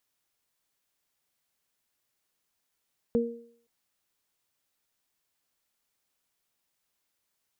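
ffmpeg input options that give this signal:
-f lavfi -i "aevalsrc='0.075*pow(10,-3*t/0.53)*sin(2*PI*234*t)+0.0841*pow(10,-3*t/0.58)*sin(2*PI*468*t)':d=0.52:s=44100"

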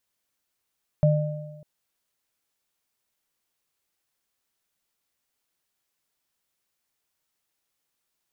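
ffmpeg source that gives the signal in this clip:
-f lavfi -i "aevalsrc='0.178*pow(10,-3*t/1.16)*sin(2*PI*151*t)+0.106*pow(10,-3*t/1.17)*sin(2*PI*602*t)':d=0.6:s=44100"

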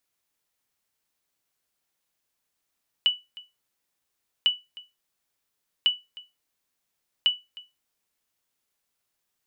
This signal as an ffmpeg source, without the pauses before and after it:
-f lavfi -i "aevalsrc='0.237*(sin(2*PI*2960*mod(t,1.4))*exp(-6.91*mod(t,1.4)/0.22)+0.0891*sin(2*PI*2960*max(mod(t,1.4)-0.31,0))*exp(-6.91*max(mod(t,1.4)-0.31,0)/0.22))':d=5.6:s=44100"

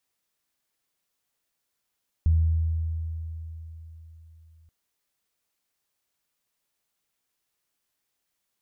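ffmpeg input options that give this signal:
-f lavfi -i "aevalsrc='0.158*pow(10,-3*t/3.87)*sin(2*PI*81.1*t)+0.0178*pow(10,-3*t/1.51)*sin(2*PI*162.2*t)':d=2.43:s=44100"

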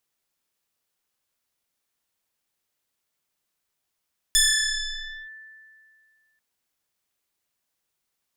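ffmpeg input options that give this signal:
-f lavfi -i "aevalsrc='0.2*pow(10,-3*t/2.25)*sin(2*PI*1760*t+5*clip(1-t/0.94,0,1)*sin(2*PI*0.99*1760*t))':d=2.04:s=44100"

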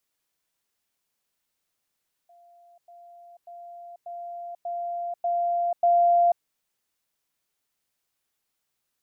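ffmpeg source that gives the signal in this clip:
-f lavfi -i "aevalsrc='pow(10,(-52+6*floor(t/0.59))/20)*sin(2*PI*694*t)*clip(min(mod(t,0.59),0.49-mod(t,0.59))/0.005,0,1)':d=4.13:s=44100"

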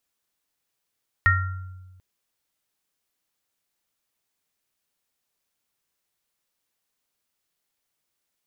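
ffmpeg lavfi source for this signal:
-f lavfi -i "aevalsrc='0.126*pow(10,-3*t/1.41)*sin(2*PI*92.1*t)+0.126*pow(10,-3*t/0.72)*sin(2*PI*1380*t)+0.2*pow(10,-3*t/0.38)*sin(2*PI*1860*t)':d=0.74:s=44100"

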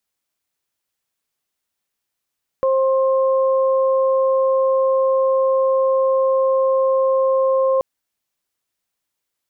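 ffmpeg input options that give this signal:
-f lavfi -i "aevalsrc='0.2*sin(2*PI*530*t)+0.0668*sin(2*PI*1060*t)':d=5.18:s=44100"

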